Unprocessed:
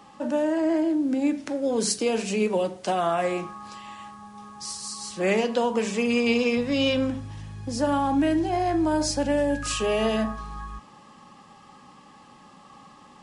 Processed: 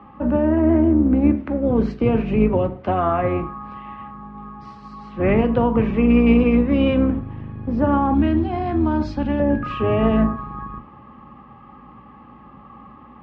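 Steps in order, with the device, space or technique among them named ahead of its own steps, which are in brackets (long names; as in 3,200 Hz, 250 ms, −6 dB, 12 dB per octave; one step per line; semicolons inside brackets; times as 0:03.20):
sub-octave bass pedal (sub-octave generator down 2 octaves, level +4 dB; loudspeaker in its box 61–2,300 Hz, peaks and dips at 71 Hz −5 dB, 130 Hz +5 dB, 230 Hz +7 dB, 330 Hz +3 dB, 1,200 Hz +5 dB, 1,700 Hz −3 dB)
0:08.14–0:09.40: octave-band graphic EQ 125/500/2,000/4,000/8,000 Hz −4/−9/−4/+10/+7 dB
level +3 dB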